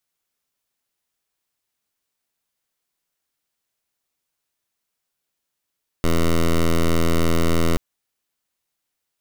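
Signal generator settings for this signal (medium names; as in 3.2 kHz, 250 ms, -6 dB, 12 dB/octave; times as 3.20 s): pulse 83.2 Hz, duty 10% -16.5 dBFS 1.73 s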